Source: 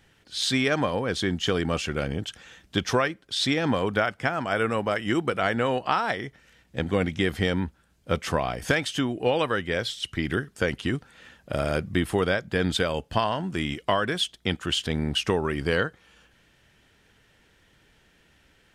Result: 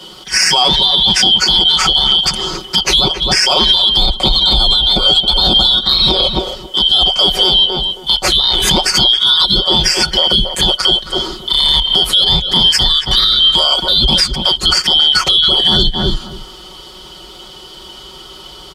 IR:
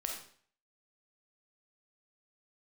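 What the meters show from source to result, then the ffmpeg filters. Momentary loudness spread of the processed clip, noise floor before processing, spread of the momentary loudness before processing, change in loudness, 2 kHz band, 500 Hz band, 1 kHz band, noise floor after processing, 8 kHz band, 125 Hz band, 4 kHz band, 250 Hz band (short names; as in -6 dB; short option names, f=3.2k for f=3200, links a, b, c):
6 LU, -62 dBFS, 6 LU, +17.0 dB, +6.5 dB, +3.5 dB, +9.0 dB, -35 dBFS, +18.5 dB, +6.5 dB, +25.0 dB, +4.0 dB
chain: -filter_complex "[0:a]afftfilt=real='real(if(lt(b,272),68*(eq(floor(b/68),0)*1+eq(floor(b/68),1)*3+eq(floor(b/68),2)*0+eq(floor(b/68),3)*2)+mod(b,68),b),0)':imag='imag(if(lt(b,272),68*(eq(floor(b/68),0)*1+eq(floor(b/68),1)*3+eq(floor(b/68),2)*0+eq(floor(b/68),3)*2)+mod(b,68),b),0)':win_size=2048:overlap=0.75,asubboost=boost=2.5:cutoff=70,afreqshift=21,acontrast=67,adynamicequalizer=threshold=0.00562:dfrequency=9900:dqfactor=4.1:tfrequency=9900:tqfactor=4.1:attack=5:release=100:ratio=0.375:range=1.5:mode=cutabove:tftype=bell,aecho=1:1:5.4:1,asplit=2[a][b];[b]adelay=270,lowpass=f=1.6k:p=1,volume=-11dB,asplit=2[c][d];[d]adelay=270,lowpass=f=1.6k:p=1,volume=0.17[e];[a][c][e]amix=inputs=3:normalize=0,acompressor=threshold=-22dB:ratio=6,alimiter=level_in=17.5dB:limit=-1dB:release=50:level=0:latency=1,volume=-1dB"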